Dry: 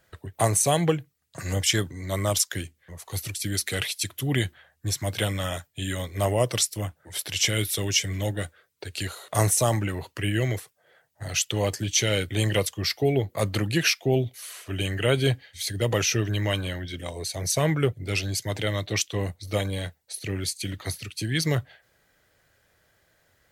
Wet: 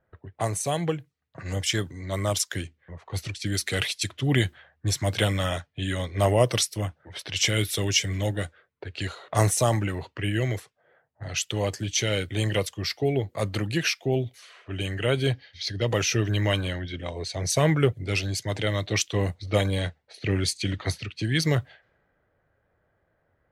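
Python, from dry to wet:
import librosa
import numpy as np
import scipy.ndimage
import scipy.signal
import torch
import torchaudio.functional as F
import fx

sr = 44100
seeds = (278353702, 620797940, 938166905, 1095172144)

y = fx.notch(x, sr, hz=7300.0, q=9.4, at=(5.44, 7.36))
y = fx.high_shelf_res(y, sr, hz=6600.0, db=-8.0, q=3.0, at=(15.33, 15.88))
y = fx.env_lowpass(y, sr, base_hz=1200.0, full_db=-24.0)
y = fx.high_shelf(y, sr, hz=9700.0, db=-10.0)
y = fx.rider(y, sr, range_db=10, speed_s=2.0)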